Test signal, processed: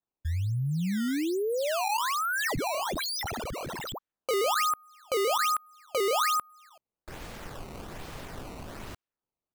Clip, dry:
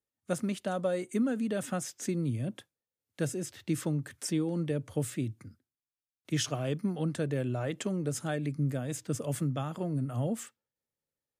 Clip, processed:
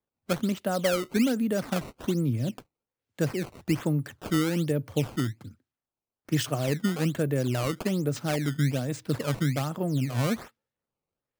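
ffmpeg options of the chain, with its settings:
-af "highshelf=f=5.1k:g=-9.5,acrusher=samples=15:mix=1:aa=0.000001:lfo=1:lforange=24:lforate=1.2,volume=5dB"

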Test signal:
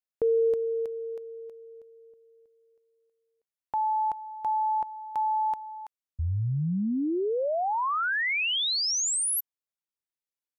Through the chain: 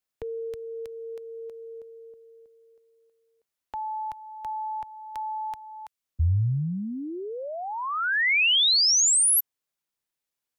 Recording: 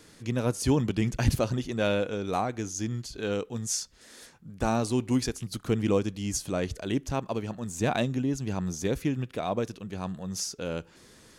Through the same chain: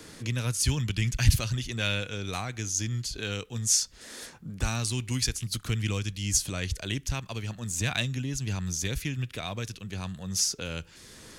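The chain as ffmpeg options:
-filter_complex "[0:a]acrossover=split=120|1700[a][b][c];[b]acompressor=threshold=-42dB:ratio=5:attack=0.83:release=924:knee=2.83:detection=peak[d];[a][d][c]amix=inputs=3:normalize=0,volume=7dB"

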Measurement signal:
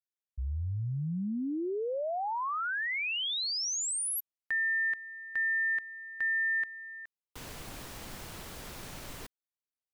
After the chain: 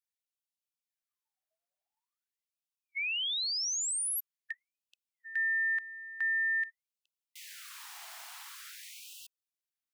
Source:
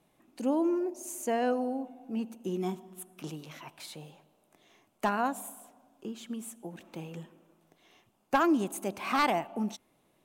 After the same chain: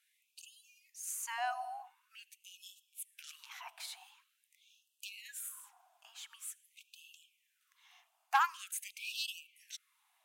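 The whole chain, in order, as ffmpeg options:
-af "asubboost=boost=5.5:cutoff=180,afftfilt=real='re*gte(b*sr/1024,620*pow(2600/620,0.5+0.5*sin(2*PI*0.46*pts/sr)))':imag='im*gte(b*sr/1024,620*pow(2600/620,0.5+0.5*sin(2*PI*0.46*pts/sr)))':win_size=1024:overlap=0.75"

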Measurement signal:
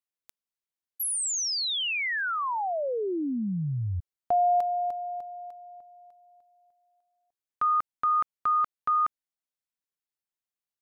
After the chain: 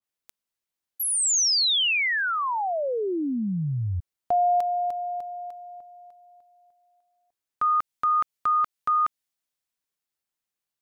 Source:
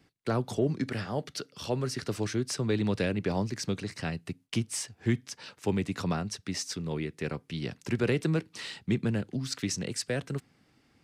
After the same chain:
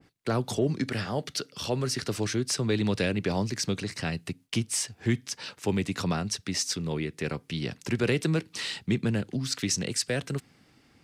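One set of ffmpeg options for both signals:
-filter_complex "[0:a]asplit=2[a][b];[b]acompressor=threshold=-34dB:ratio=6:attack=0.22:release=148:detection=rms,volume=-3dB[c];[a][c]amix=inputs=2:normalize=0,adynamicequalizer=threshold=0.0112:dfrequency=2100:dqfactor=0.7:tfrequency=2100:tqfactor=0.7:attack=5:release=100:ratio=0.375:range=2.5:mode=boostabove:tftype=highshelf"

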